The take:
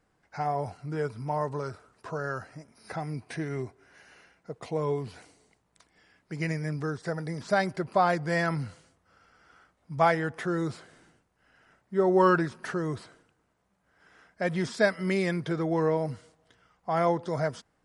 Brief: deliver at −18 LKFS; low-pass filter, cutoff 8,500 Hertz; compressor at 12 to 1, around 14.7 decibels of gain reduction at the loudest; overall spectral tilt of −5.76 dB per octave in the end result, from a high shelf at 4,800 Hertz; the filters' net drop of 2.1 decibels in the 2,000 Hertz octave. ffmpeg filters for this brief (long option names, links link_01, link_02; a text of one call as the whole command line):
ffmpeg -i in.wav -af "lowpass=8500,equalizer=frequency=2000:width_type=o:gain=-3.5,highshelf=frequency=4800:gain=5.5,acompressor=threshold=-32dB:ratio=12,volume=20.5dB" out.wav